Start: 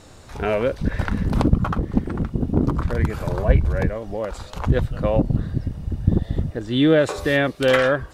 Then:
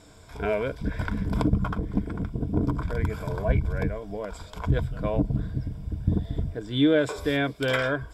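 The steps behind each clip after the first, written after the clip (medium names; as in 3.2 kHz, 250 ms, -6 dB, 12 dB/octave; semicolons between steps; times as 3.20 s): rippled EQ curve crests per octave 1.7, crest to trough 10 dB; trim -7 dB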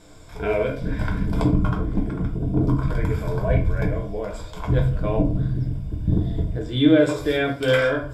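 reverberation RT60 0.45 s, pre-delay 6 ms, DRR 0 dB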